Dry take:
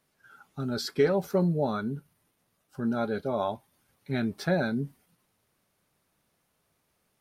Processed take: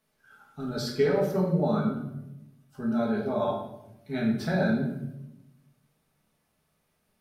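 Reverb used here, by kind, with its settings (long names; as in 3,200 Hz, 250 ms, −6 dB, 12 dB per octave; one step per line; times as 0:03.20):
rectangular room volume 290 cubic metres, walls mixed, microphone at 1.5 metres
level −4.5 dB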